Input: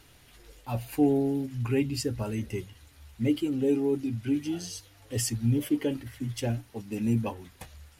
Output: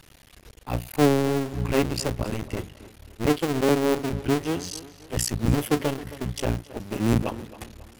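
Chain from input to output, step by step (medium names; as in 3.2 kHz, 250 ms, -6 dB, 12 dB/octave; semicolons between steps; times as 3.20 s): cycle switcher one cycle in 2, muted; tape echo 269 ms, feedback 46%, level -15.5 dB, low-pass 4.4 kHz; trim +6.5 dB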